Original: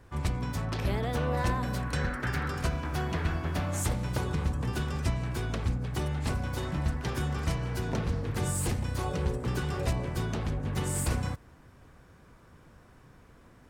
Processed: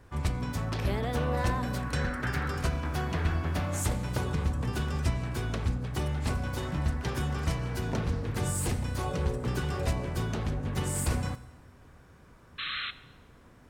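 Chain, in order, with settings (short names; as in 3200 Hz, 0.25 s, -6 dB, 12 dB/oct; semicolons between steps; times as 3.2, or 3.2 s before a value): painted sound noise, 12.58–12.91, 1100–4200 Hz -35 dBFS; reverb RT60 1.2 s, pre-delay 6 ms, DRR 14 dB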